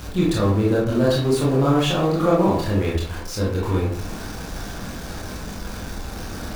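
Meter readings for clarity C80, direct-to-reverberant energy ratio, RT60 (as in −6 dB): 7.5 dB, −5.5 dB, 0.60 s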